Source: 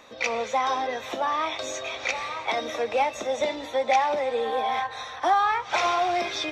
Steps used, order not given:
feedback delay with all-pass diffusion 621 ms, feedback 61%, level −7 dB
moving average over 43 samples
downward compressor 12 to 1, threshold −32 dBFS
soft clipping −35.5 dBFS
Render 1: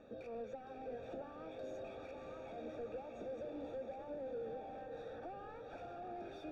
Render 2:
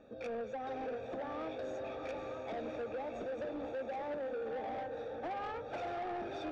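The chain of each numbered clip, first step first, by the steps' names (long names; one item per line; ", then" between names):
downward compressor, then feedback delay with all-pass diffusion, then soft clipping, then moving average
moving average, then downward compressor, then feedback delay with all-pass diffusion, then soft clipping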